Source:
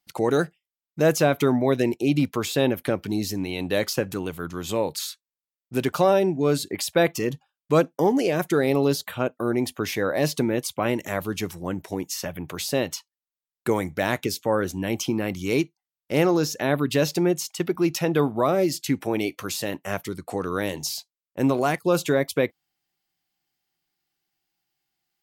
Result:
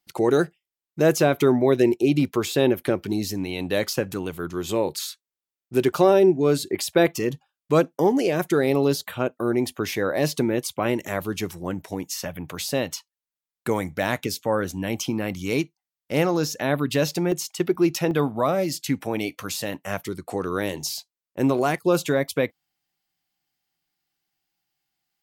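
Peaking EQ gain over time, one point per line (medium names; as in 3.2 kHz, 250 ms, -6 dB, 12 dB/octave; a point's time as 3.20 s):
peaking EQ 370 Hz 0.27 oct
+7.5 dB
from 3.13 s +0.5 dB
from 4.34 s +8.5 dB
from 7.06 s +2.5 dB
from 11.71 s -5 dB
from 17.32 s +4 dB
from 18.11 s -7.5 dB
from 20.04 s +3 dB
from 21.97 s -4.5 dB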